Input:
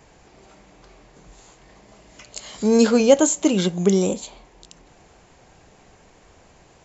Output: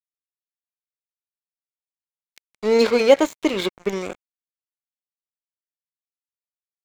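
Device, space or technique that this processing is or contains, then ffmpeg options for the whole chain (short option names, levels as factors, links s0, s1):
pocket radio on a weak battery: -filter_complex "[0:a]asettb=1/sr,asplit=3[s0][s1][s2];[s0]atrim=end=2.414[s3];[s1]atrim=start=2.41:end=3.75,asetpts=PTS-STARTPTS,afade=t=in:d=0.004:c=qsin,afade=t=out:st=1.336:d=0.004:c=qsin,equalizer=f=400:t=o:w=0.67:g=7,equalizer=f=1000:t=o:w=0.67:g=6,equalizer=f=4000:t=o:w=0.67:g=8[s4];[s2]atrim=start=3.746[s5];[s3][s4]acrossfade=d=0.004:c1=hsin:c2=qsin[s6];[s6][s5]acrossfade=d=0.004:c1=qsin:c2=hsin,highpass=300,lowpass=4300,aeval=exprs='sgn(val(0))*max(abs(val(0))-0.0473,0)':c=same,equalizer=f=2200:t=o:w=0.31:g=10,volume=0.841"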